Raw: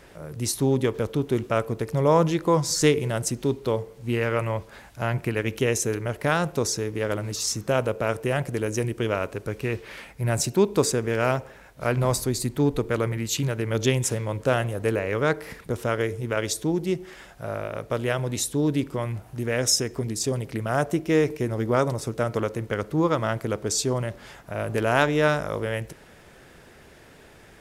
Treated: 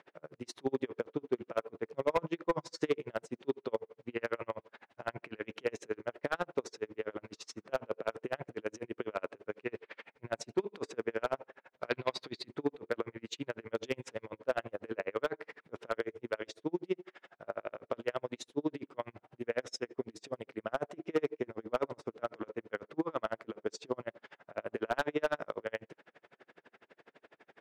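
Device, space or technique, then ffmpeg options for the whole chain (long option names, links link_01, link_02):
helicopter radio: -filter_complex "[0:a]highpass=310,lowpass=2800,aeval=exprs='val(0)*pow(10,-38*(0.5-0.5*cos(2*PI*12*n/s))/20)':channel_layout=same,asoftclip=type=hard:threshold=-19.5dB,asettb=1/sr,asplit=3[link_01][link_02][link_03];[link_01]atrim=end=11.894[link_04];[link_02]atrim=start=11.89:end=12.48,asetpts=PTS-STARTPTS,afade=type=in:duration=0.004:curve=qsin,afade=type=out:start_time=0.586:duration=0.004:curve=qsin,equalizer=frequency=2000:width_type=o:width=1:gain=4,equalizer=frequency=4000:width_type=o:width=1:gain=12,equalizer=frequency=8000:width_type=o:width=1:gain=-7[link_05];[link_03]atrim=start=12.476[link_06];[link_04][link_05]acrossfade=duration=0.004:curve1=hsin:curve2=qsin[link_07];[link_07][link_06]acrossfade=duration=0.004:curve1=qsin:curve2=hsin,volume=-2dB"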